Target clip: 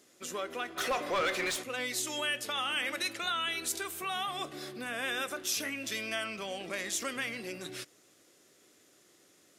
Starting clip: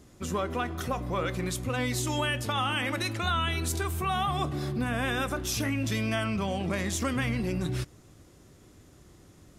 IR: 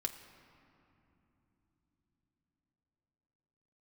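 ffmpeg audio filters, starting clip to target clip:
-filter_complex "[0:a]highpass=510,equalizer=frequency=930:width_type=o:width=1:gain=-9.5,asplit=3[link_01][link_02][link_03];[link_01]afade=type=out:start_time=0.76:duration=0.02[link_04];[link_02]asplit=2[link_05][link_06];[link_06]highpass=frequency=720:poles=1,volume=22dB,asoftclip=type=tanh:threshold=-21.5dB[link_07];[link_05][link_07]amix=inputs=2:normalize=0,lowpass=frequency=3200:poles=1,volume=-6dB,afade=type=in:start_time=0.76:duration=0.02,afade=type=out:start_time=1.62:duration=0.02[link_08];[link_03]afade=type=in:start_time=1.62:duration=0.02[link_09];[link_04][link_08][link_09]amix=inputs=3:normalize=0"

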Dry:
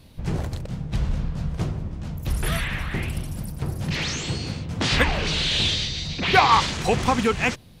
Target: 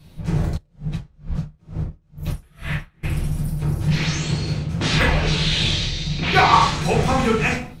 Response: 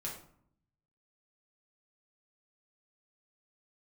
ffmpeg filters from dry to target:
-filter_complex "[1:a]atrim=start_sample=2205,afade=type=out:start_time=0.33:duration=0.01,atrim=end_sample=14994[link_01];[0:a][link_01]afir=irnorm=-1:irlink=0,asplit=3[link_02][link_03][link_04];[link_02]afade=type=out:start_time=0.56:duration=0.02[link_05];[link_03]aeval=exprs='val(0)*pow(10,-36*(0.5-0.5*cos(2*PI*2.2*n/s))/20)':channel_layout=same,afade=type=in:start_time=0.56:duration=0.02,afade=type=out:start_time=3.03:duration=0.02[link_06];[link_04]afade=type=in:start_time=3.03:duration=0.02[link_07];[link_05][link_06][link_07]amix=inputs=3:normalize=0,volume=2dB"

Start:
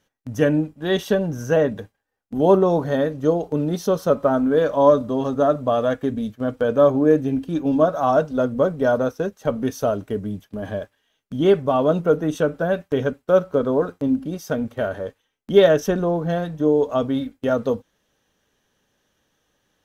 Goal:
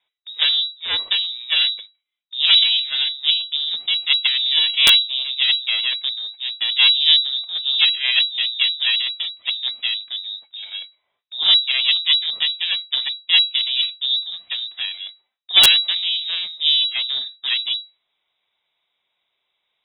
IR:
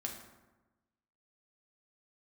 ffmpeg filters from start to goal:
-af "aeval=exprs='0.75*(cos(1*acos(clip(val(0)/0.75,-1,1)))-cos(1*PI/2))+0.0596*(cos(3*acos(clip(val(0)/0.75,-1,1)))-cos(3*PI/2))+0.335*(cos(4*acos(clip(val(0)/0.75,-1,1)))-cos(4*PI/2))':channel_layout=same,lowpass=frequency=3300:width_type=q:width=0.5098,lowpass=frequency=3300:width_type=q:width=0.6013,lowpass=frequency=3300:width_type=q:width=0.9,lowpass=frequency=3300:width_type=q:width=2.563,afreqshift=-3900,aeval=exprs='(mod(0.944*val(0)+1,2)-1)/0.944':channel_layout=same,volume=-1.5dB"

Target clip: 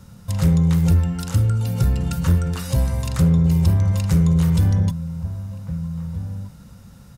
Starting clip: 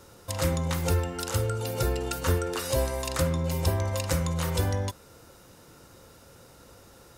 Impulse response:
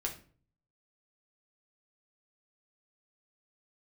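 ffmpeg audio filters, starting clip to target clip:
-filter_complex "[0:a]lowshelf=frequency=260:width_type=q:width=3:gain=11,asplit=2[link_01][link_02];[link_02]adelay=1574,volume=-13dB,highshelf=frequency=4000:gain=-35.4[link_03];[link_01][link_03]amix=inputs=2:normalize=0,acontrast=70,volume=-7dB"

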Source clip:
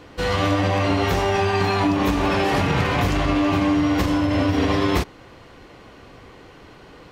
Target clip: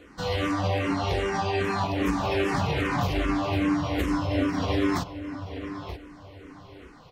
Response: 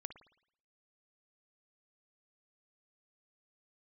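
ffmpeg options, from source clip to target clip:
-filter_complex "[0:a]asettb=1/sr,asplit=3[link_01][link_02][link_03];[link_01]atrim=end=0.944[link_04];[link_02]atrim=start=0.94:end=1.64,asetpts=PTS-STARTPTS,afade=type=in:duration=0.004:curve=qsin,afade=type=out:start_time=0.696:duration=0.004:curve=qsin,lowpass=frequency=9800:width=0.5412,lowpass=frequency=9800:width=1.3066[link_05];[link_03]atrim=start=1.636[link_06];[link_04][link_05]acrossfade=duration=0.004:curve1=hsin:curve2=qsin[link_07];[link_07][link_06]acrossfade=duration=0.004:curve1=qsin:curve2=hsin,asplit=2[link_08][link_09];[link_09]adelay=933,lowpass=frequency=3900:poles=1,volume=-10dB,asplit=2[link_10][link_11];[link_11]adelay=933,lowpass=frequency=3900:poles=1,volume=0.26,asplit=2[link_12][link_13];[link_13]adelay=933,lowpass=frequency=3900:poles=1,volume=0.26[link_14];[link_08][link_10][link_12][link_14]amix=inputs=4:normalize=0,asplit=2[link_15][link_16];[link_16]afreqshift=-2.5[link_17];[link_15][link_17]amix=inputs=2:normalize=1,volume=-3.5dB"

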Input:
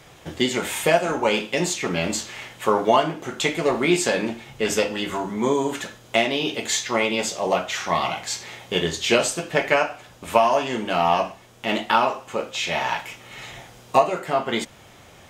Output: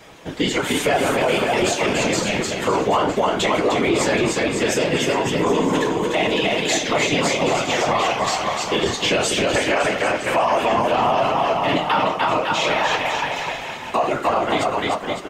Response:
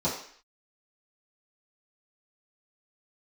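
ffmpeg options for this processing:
-filter_complex "[0:a]highpass=140,highshelf=frequency=7800:gain=-8,asplit=2[link_01][link_02];[link_02]aecho=0:1:300|555|771.8|956|1113:0.631|0.398|0.251|0.158|0.1[link_03];[link_01][link_03]amix=inputs=2:normalize=0,afftfilt=real='hypot(re,im)*cos(2*PI*random(0))':imag='hypot(re,im)*sin(2*PI*random(1))':win_size=512:overlap=0.75,asplit=2[link_04][link_05];[link_05]asoftclip=type=tanh:threshold=-20.5dB,volume=-10dB[link_06];[link_04][link_06]amix=inputs=2:normalize=0,flanger=delay=6.3:depth=4:regen=-54:speed=0.16:shape=sinusoidal,alimiter=level_in=21.5dB:limit=-1dB:release=50:level=0:latency=1,volume=-9dB"

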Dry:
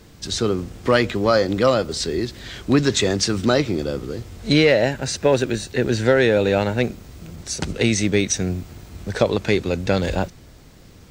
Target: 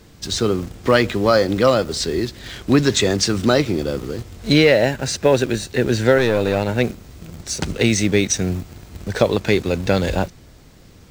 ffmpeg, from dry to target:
ffmpeg -i in.wav -filter_complex "[0:a]asettb=1/sr,asplit=3[link_01][link_02][link_03];[link_01]atrim=end=6.184[link_04];[link_02]atrim=start=6.18:end=6.69,asetpts=PTS-STARTPTS,afade=type=in:duration=0.004:curve=qsin,afade=type=out:start_time=0.506:duration=0.004:curve=qsin,aeval=exprs='(tanh(3.98*val(0)+0.55)-tanh(0.55))/3.98':channel_layout=same[link_05];[link_03]atrim=start=6.686[link_06];[link_04][link_05]acrossfade=duration=0.004:curve1=hsin:curve2=qsin[link_07];[link_07][link_06]acrossfade=duration=0.004:curve1=qsin:curve2=hsin,asplit=2[link_08][link_09];[link_09]acrusher=bits=4:mix=0:aa=0.000001,volume=-12dB[link_10];[link_08][link_10]amix=inputs=2:normalize=0" out.wav

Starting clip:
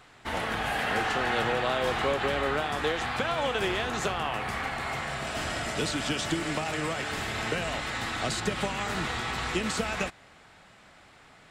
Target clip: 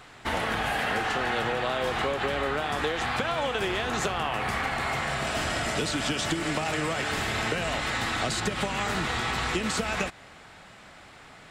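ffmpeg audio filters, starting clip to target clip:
ffmpeg -i in.wav -af "acompressor=threshold=-30dB:ratio=6,volume=5.5dB" out.wav

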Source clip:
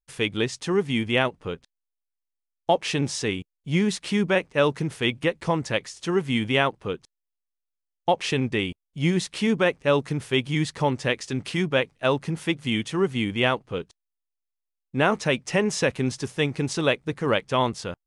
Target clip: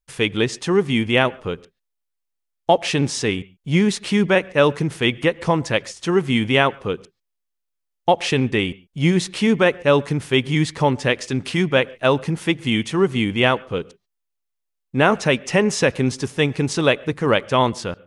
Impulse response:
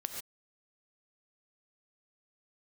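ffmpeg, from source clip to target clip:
-filter_complex "[0:a]asplit=2[link_01][link_02];[1:a]atrim=start_sample=2205,atrim=end_sample=6615,lowpass=3600[link_03];[link_02][link_03]afir=irnorm=-1:irlink=0,volume=-18dB[link_04];[link_01][link_04]amix=inputs=2:normalize=0,volume=4.5dB"

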